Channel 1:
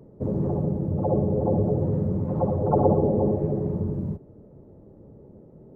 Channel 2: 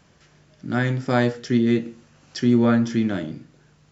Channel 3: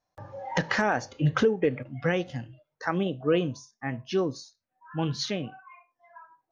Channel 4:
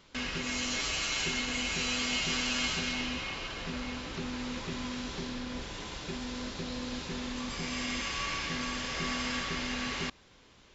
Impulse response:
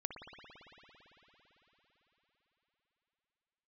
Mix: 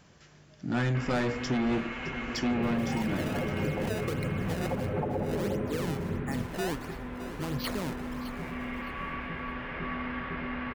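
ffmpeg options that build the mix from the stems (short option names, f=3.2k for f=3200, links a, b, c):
-filter_complex "[0:a]adelay=2300,volume=-7.5dB[a];[1:a]asoftclip=type=tanh:threshold=-22dB,volume=-1dB,asplit=2[b][c];[c]volume=-15dB[d];[2:a]alimiter=limit=-23.5dB:level=0:latency=1:release=86,acrusher=samples=23:mix=1:aa=0.000001:lfo=1:lforange=36.8:lforate=1.5,adelay=2450,volume=-1dB,asplit=2[e][f];[f]volume=-13dB[g];[3:a]lowpass=f=2.1k:w=0.5412,lowpass=f=2.1k:w=1.3066,acontrast=86,adelay=800,volume=-7.5dB,asplit=2[h][i];[i]volume=-5.5dB[j];[d][g][j]amix=inputs=3:normalize=0,aecho=0:1:613|1226|1839|2452:1|0.28|0.0784|0.022[k];[a][b][e][h][k]amix=inputs=5:normalize=0,alimiter=limit=-21dB:level=0:latency=1:release=261"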